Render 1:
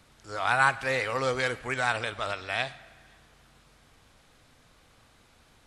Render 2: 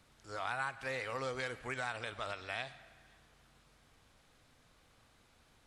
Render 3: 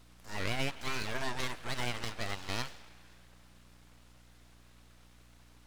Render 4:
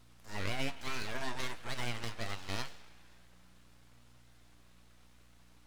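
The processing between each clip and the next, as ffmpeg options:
ffmpeg -i in.wav -af "acompressor=threshold=-29dB:ratio=3,volume=-7dB" out.wav
ffmpeg -i in.wav -af "aeval=exprs='abs(val(0))':channel_layout=same,aeval=exprs='val(0)+0.000501*(sin(2*PI*60*n/s)+sin(2*PI*2*60*n/s)/2+sin(2*PI*3*60*n/s)/3+sin(2*PI*4*60*n/s)/4+sin(2*PI*5*60*n/s)/5)':channel_layout=same,volume=6dB" out.wav
ffmpeg -i in.wav -af "flanger=delay=8.5:depth=3.6:regen=68:speed=0.49:shape=sinusoidal,volume=1.5dB" out.wav

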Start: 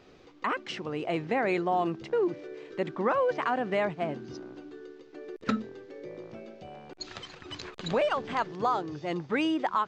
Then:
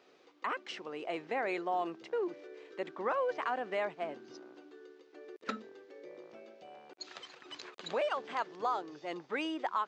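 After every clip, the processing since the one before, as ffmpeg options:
ffmpeg -i in.wav -af "highpass=370,volume=-5.5dB" out.wav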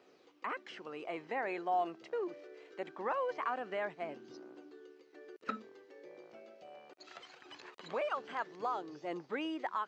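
ffmpeg -i in.wav -filter_complex "[0:a]acrossover=split=2600[link_01][link_02];[link_02]acompressor=threshold=-52dB:ratio=4:attack=1:release=60[link_03];[link_01][link_03]amix=inputs=2:normalize=0,bandreject=frequency=3600:width=20,flanger=delay=0.1:depth=1.6:regen=65:speed=0.22:shape=triangular,volume=2.5dB" out.wav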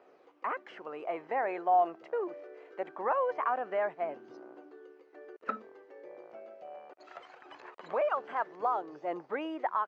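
ffmpeg -i in.wav -af "firequalizer=gain_entry='entry(170,0);entry(630,11);entry(3800,-6)':delay=0.05:min_phase=1,volume=-3dB" out.wav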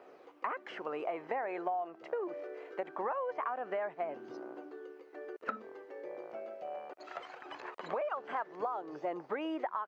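ffmpeg -i in.wav -af "acompressor=threshold=-37dB:ratio=10,volume=4.5dB" out.wav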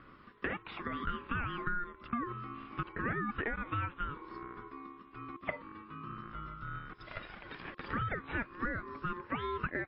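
ffmpeg -i in.wav -af "bandreject=frequency=60:width_type=h:width=6,bandreject=frequency=120:width_type=h:width=6,bandreject=frequency=180:width_type=h:width=6,bandreject=frequency=240:width_type=h:width=6,bandreject=frequency=300:width_type=h:width=6,bandreject=frequency=360:width_type=h:width=6,aeval=exprs='val(0)*sin(2*PI*710*n/s)':channel_layout=same,volume=3.5dB" -ar 12000 -c:a libmp3lame -b:a 24k out.mp3

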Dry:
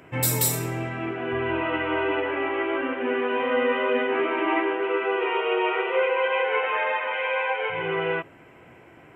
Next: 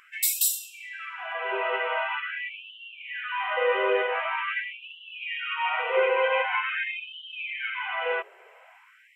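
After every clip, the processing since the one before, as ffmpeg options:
ffmpeg -i in.wav -af "afftfilt=real='re*gte(b*sr/1024,360*pow(2700/360,0.5+0.5*sin(2*PI*0.45*pts/sr)))':imag='im*gte(b*sr/1024,360*pow(2700/360,0.5+0.5*sin(2*PI*0.45*pts/sr)))':win_size=1024:overlap=0.75" out.wav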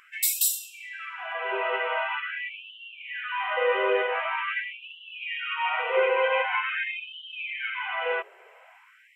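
ffmpeg -i in.wav -af anull out.wav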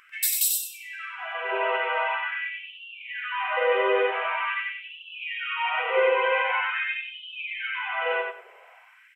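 ffmpeg -i in.wav -af "bandreject=frequency=7200:width=12,aecho=1:1:94|188|282:0.631|0.145|0.0334" out.wav

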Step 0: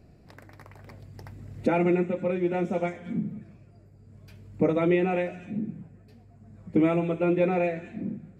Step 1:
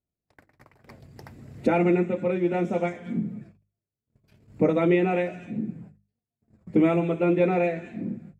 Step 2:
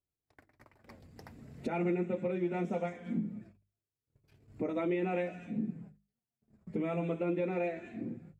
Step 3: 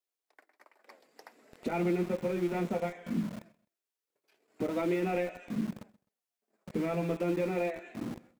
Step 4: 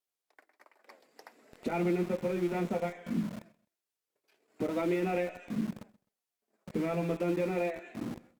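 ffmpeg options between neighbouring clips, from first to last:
ffmpeg -i in.wav -af "agate=range=-37dB:threshold=-46dB:ratio=16:detection=peak,bandreject=frequency=50:width_type=h:width=6,bandreject=frequency=100:width_type=h:width=6,bandreject=frequency=150:width_type=h:width=6,bandreject=frequency=200:width_type=h:width=6,volume=2dB" out.wav
ffmpeg -i in.wav -af "alimiter=limit=-19dB:level=0:latency=1:release=282,flanger=delay=2.2:depth=3.2:regen=-52:speed=0.24:shape=triangular,volume=-1.5dB" out.wav
ffmpeg -i in.wav -filter_complex "[0:a]acrossover=split=370|1500[link_01][link_02][link_03];[link_01]aeval=exprs='val(0)*gte(abs(val(0)),0.0075)':channel_layout=same[link_04];[link_04][link_02][link_03]amix=inputs=3:normalize=0,aecho=1:1:129|258:0.0708|0.0212,volume=2dB" out.wav
ffmpeg -i in.wav -ar 48000 -c:a libopus -b:a 256k out.opus

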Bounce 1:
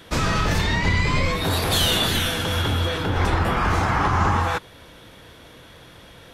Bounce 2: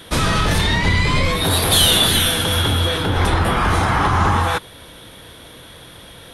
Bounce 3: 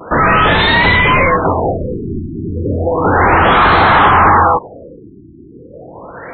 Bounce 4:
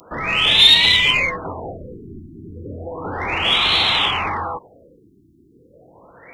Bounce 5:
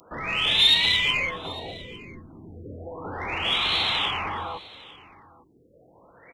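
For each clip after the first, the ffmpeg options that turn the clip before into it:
ffmpeg -i in.wav -af "acontrast=73,superequalizer=13b=1.58:16b=2.82,volume=-2.5dB" out.wav
ffmpeg -i in.wav -filter_complex "[0:a]asplit=2[link_01][link_02];[link_02]highpass=frequency=720:poles=1,volume=22dB,asoftclip=type=tanh:threshold=-2dB[link_03];[link_01][link_03]amix=inputs=2:normalize=0,lowpass=frequency=1700:poles=1,volume=-6dB,afftfilt=real='re*lt(b*sr/1024,380*pow(4400/380,0.5+0.5*sin(2*PI*0.33*pts/sr)))':imag='im*lt(b*sr/1024,380*pow(4400/380,0.5+0.5*sin(2*PI*0.33*pts/sr)))':win_size=1024:overlap=0.75,volume=3dB" out.wav
ffmpeg -i in.wav -af "aexciter=amount=16:drive=6.2:freq=2500,volume=-15.5dB" out.wav
ffmpeg -i in.wav -af "aecho=1:1:853:0.0891,volume=-7.5dB" out.wav

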